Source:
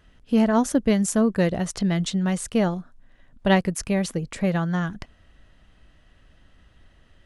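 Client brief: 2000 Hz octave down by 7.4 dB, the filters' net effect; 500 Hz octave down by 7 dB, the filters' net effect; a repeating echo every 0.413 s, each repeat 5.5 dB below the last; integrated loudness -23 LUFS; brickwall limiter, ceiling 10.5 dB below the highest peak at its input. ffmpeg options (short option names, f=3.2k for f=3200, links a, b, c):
-af "equalizer=f=500:t=o:g=-8.5,equalizer=f=2k:t=o:g=-8.5,alimiter=limit=-21dB:level=0:latency=1,aecho=1:1:413|826|1239|1652|2065|2478|2891:0.531|0.281|0.149|0.079|0.0419|0.0222|0.0118,volume=6.5dB"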